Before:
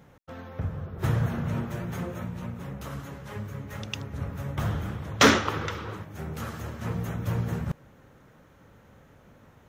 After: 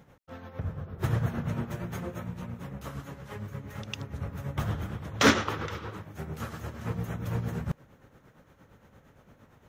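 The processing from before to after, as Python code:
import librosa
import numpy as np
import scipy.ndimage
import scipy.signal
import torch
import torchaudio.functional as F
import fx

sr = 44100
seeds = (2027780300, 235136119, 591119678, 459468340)

y = x * (1.0 - 0.57 / 2.0 + 0.57 / 2.0 * np.cos(2.0 * np.pi * 8.7 * (np.arange(len(x)) / sr)))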